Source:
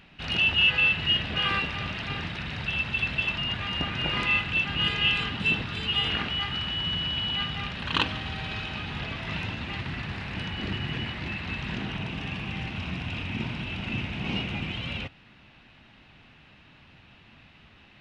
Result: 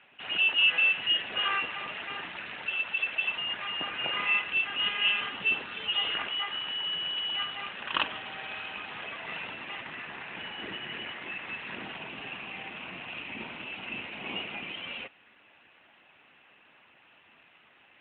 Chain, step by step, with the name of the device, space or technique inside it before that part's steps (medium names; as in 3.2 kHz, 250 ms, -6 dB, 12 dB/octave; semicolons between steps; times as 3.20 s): 2.69–3.24 s: high-pass 220 Hz 12 dB/octave; telephone (band-pass 400–3400 Hz; AMR-NB 12.2 kbps 8 kHz)